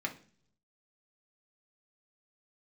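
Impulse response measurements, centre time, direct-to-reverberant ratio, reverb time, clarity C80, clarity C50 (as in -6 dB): 9 ms, 0.5 dB, 0.45 s, 19.0 dB, 13.5 dB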